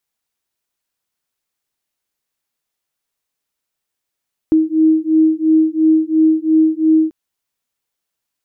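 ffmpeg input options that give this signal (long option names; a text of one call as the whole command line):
ffmpeg -f lavfi -i "aevalsrc='0.224*(sin(2*PI*315*t)+sin(2*PI*317.9*t))':duration=2.59:sample_rate=44100" out.wav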